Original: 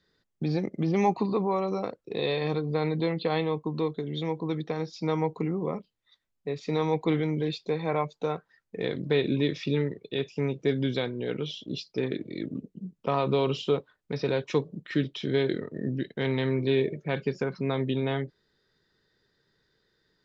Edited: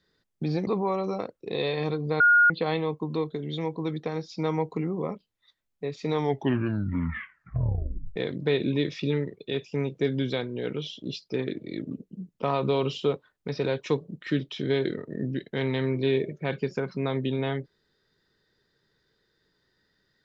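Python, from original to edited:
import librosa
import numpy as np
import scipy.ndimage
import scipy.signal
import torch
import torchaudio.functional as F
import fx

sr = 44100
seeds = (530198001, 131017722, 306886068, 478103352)

y = fx.edit(x, sr, fx.cut(start_s=0.67, length_s=0.64),
    fx.bleep(start_s=2.84, length_s=0.3, hz=1430.0, db=-14.5),
    fx.tape_stop(start_s=6.76, length_s=2.04), tone=tone)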